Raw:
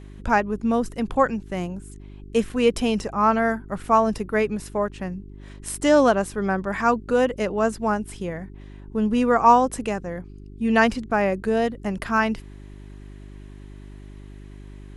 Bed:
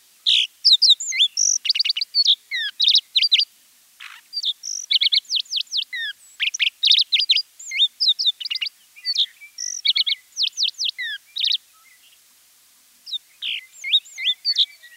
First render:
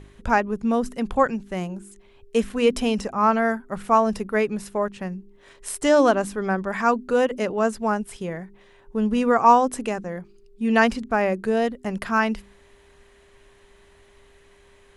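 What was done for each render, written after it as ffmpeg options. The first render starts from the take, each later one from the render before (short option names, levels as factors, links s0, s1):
-af "bandreject=f=50:t=h:w=4,bandreject=f=100:t=h:w=4,bandreject=f=150:t=h:w=4,bandreject=f=200:t=h:w=4,bandreject=f=250:t=h:w=4,bandreject=f=300:t=h:w=4,bandreject=f=350:t=h:w=4"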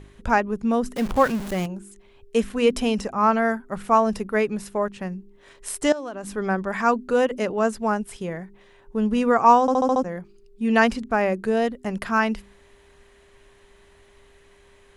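-filter_complex "[0:a]asettb=1/sr,asplit=3[s0][s1][s2];[s0]atrim=end=0.964[s3];[s1]atrim=start=0.96:end=1.66,asetpts=PTS-STARTPTS,afade=t=in:d=0.004:c=qsin,afade=t=out:st=0.696:d=0.004:c=qsin,aeval=exprs='val(0)+0.5*0.0398*sgn(val(0))':c=same[s4];[s2]atrim=start=1.656[s5];[s3][s4]acrossfade=d=0.004:c1=hsin:c2=qsin[s6];[s6][s5]acrossfade=d=0.004:c1=qsin:c2=hsin,asettb=1/sr,asplit=3[s7][s8][s9];[s7]atrim=end=5.924[s10];[s8]atrim=start=5.92:end=6.33,asetpts=PTS-STARTPTS,afade=t=in:d=0.004:c=qsin,afade=t=out:st=0.406:d=0.004:c=qsin,acompressor=threshold=0.0398:ratio=20:attack=3.2:release=140:knee=1:detection=peak[s11];[s9]atrim=start=6.326[s12];[s10][s11]acrossfade=d=0.004:c1=hsin:c2=qsin[s13];[s13][s12]acrossfade=d=0.004:c1=qsin:c2=hsin,asplit=7[s14][s15][s16][s17][s18][s19][s20];[s14]atrim=end=9.682[s21];[s15]atrim=start=9.608:end=9.682[s22];[s16]atrim=start=9.608:end=9.682[s23];[s17]atrim=start=9.608:end=9.682[s24];[s18]atrim=start=9.608:end=9.682[s25];[s19]atrim=start=9.608:end=9.682[s26];[s20]atrim=start=10.028[s27];[s21][s22]acrossfade=d=0.004:c1=hsin:c2=hsin[s28];[s28][s23]acrossfade=d=0.004:c1=hsin:c2=hsin[s29];[s29][s24]acrossfade=d=0.004:c1=hsin:c2=hsin[s30];[s30][s25]acrossfade=d=0.004:c1=hsin:c2=hsin[s31];[s31][s26]acrossfade=d=0.004:c1=hsin:c2=hsin[s32];[s32][s27]acrossfade=d=0.004:c1=hsin:c2=hsin"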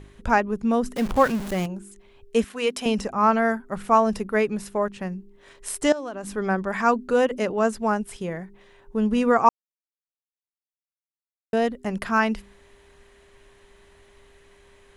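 -filter_complex "[0:a]asettb=1/sr,asplit=3[s0][s1][s2];[s0]atrim=end=2.444[s3];[s1]atrim=start=2.44:end=2.86,asetpts=PTS-STARTPTS,afade=t=in:d=0.004:c=qsin,afade=t=out:st=0.416:d=0.004:c=qsin,highpass=f=740:p=1[s4];[s2]atrim=start=2.856[s5];[s3][s4]acrossfade=d=0.004:c1=hsin:c2=qsin[s6];[s6][s5]acrossfade=d=0.004:c1=qsin:c2=hsin,asplit=3[s7][s8][s9];[s7]atrim=end=9.49,asetpts=PTS-STARTPTS,afade=t=out:st=9.486:d=0.004:c=hsin[s10];[s8]atrim=start=9.49:end=11.53,asetpts=PTS-STARTPTS,volume=0[s11];[s9]atrim=start=11.53,asetpts=PTS-STARTPTS,afade=t=in:d=0.004:c=hsin[s12];[s10][s11][s12]concat=n=3:v=0:a=1"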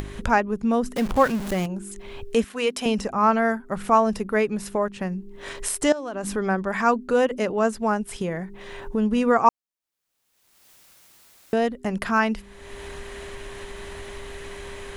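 -af "acompressor=mode=upward:threshold=0.0891:ratio=2.5"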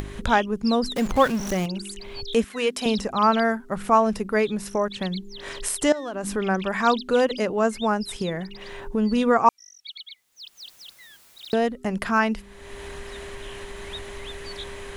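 -filter_complex "[1:a]volume=0.0841[s0];[0:a][s0]amix=inputs=2:normalize=0"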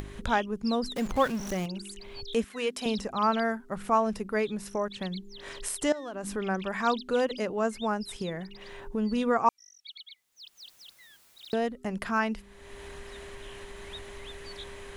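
-af "volume=0.473"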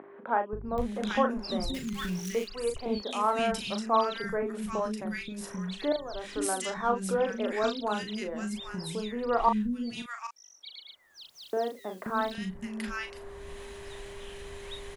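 -filter_complex "[0:a]asplit=2[s0][s1];[s1]adelay=38,volume=0.447[s2];[s0][s2]amix=inputs=2:normalize=0,acrossover=split=280|1600[s3][s4][s5];[s3]adelay=530[s6];[s5]adelay=780[s7];[s6][s4][s7]amix=inputs=3:normalize=0"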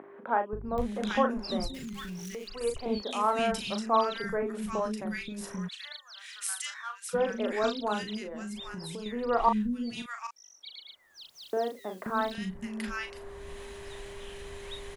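-filter_complex "[0:a]asettb=1/sr,asplit=3[s0][s1][s2];[s0]atrim=end=1.674[s3];[s1]atrim=start=1.67:end=2.61,asetpts=PTS-STARTPTS,afade=t=in:d=0.004:c=qsin,afade=t=out:st=0.936:d=0.004:c=qsin,acompressor=threshold=0.0158:ratio=6:attack=3.2:release=140:knee=1:detection=peak[s4];[s2]atrim=start=2.606[s5];[s3][s4]acrossfade=d=0.004:c1=hsin:c2=qsin[s6];[s6][s5]acrossfade=d=0.004:c1=qsin:c2=hsin,asplit=3[s7][s8][s9];[s7]afade=t=out:st=5.67:d=0.02[s10];[s8]highpass=f=1500:w=0.5412,highpass=f=1500:w=1.3066,afade=t=in:st=5.67:d=0.02,afade=t=out:st=7.13:d=0.02[s11];[s9]afade=t=in:st=7.13:d=0.02[s12];[s10][s11][s12]amix=inputs=3:normalize=0,asettb=1/sr,asplit=3[s13][s14][s15];[s13]atrim=end=8.174[s16];[s14]atrim=start=8.17:end=9.06,asetpts=PTS-STARTPTS,afade=t=in:d=0.004:c=qsin,afade=t=out:st=0.886:d=0.004:c=qsin,acompressor=threshold=0.0178:ratio=6:attack=3.2:release=140:knee=1:detection=peak[s17];[s15]atrim=start=9.056[s18];[s16][s17]acrossfade=d=0.004:c1=hsin:c2=qsin[s19];[s19][s18]acrossfade=d=0.004:c1=qsin:c2=hsin"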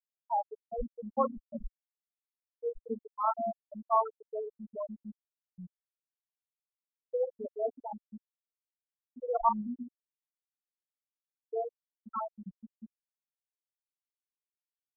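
-af "afftfilt=real='re*gte(hypot(re,im),0.251)':imag='im*gte(hypot(re,im),0.251)':win_size=1024:overlap=0.75,equalizer=f=150:w=0.46:g=-7"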